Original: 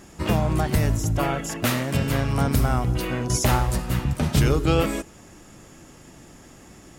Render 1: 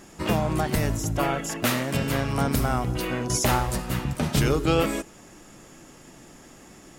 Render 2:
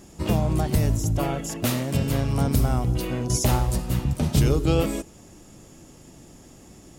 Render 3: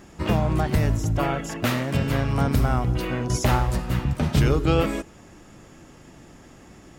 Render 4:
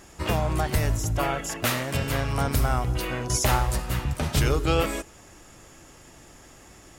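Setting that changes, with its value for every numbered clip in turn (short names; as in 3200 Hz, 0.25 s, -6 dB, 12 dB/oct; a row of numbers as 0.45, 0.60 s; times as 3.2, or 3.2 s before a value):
bell, frequency: 74, 1600, 11000, 200 Hz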